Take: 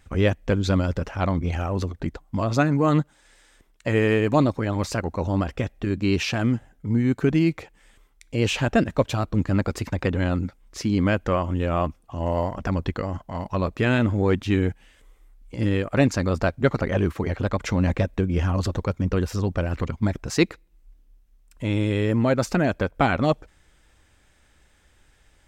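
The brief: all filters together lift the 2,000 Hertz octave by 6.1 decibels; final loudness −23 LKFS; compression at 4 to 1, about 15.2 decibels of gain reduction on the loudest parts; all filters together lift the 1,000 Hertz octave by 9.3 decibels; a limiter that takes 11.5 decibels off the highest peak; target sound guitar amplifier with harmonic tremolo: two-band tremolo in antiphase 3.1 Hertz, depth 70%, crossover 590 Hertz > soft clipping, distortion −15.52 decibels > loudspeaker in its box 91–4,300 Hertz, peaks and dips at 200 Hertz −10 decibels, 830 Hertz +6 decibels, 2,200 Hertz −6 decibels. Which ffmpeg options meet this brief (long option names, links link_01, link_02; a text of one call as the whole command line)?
ffmpeg -i in.wav -filter_complex "[0:a]equalizer=frequency=1000:width_type=o:gain=7,equalizer=frequency=2000:width_type=o:gain=7.5,acompressor=threshold=-30dB:ratio=4,alimiter=level_in=1.5dB:limit=-24dB:level=0:latency=1,volume=-1.5dB,acrossover=split=590[link_01][link_02];[link_01]aeval=exprs='val(0)*(1-0.7/2+0.7/2*cos(2*PI*3.1*n/s))':channel_layout=same[link_03];[link_02]aeval=exprs='val(0)*(1-0.7/2-0.7/2*cos(2*PI*3.1*n/s))':channel_layout=same[link_04];[link_03][link_04]amix=inputs=2:normalize=0,asoftclip=threshold=-31dB,highpass=91,equalizer=frequency=200:width_type=q:width=4:gain=-10,equalizer=frequency=830:width_type=q:width=4:gain=6,equalizer=frequency=2200:width_type=q:width=4:gain=-6,lowpass=frequency=4300:width=0.5412,lowpass=frequency=4300:width=1.3066,volume=19.5dB" out.wav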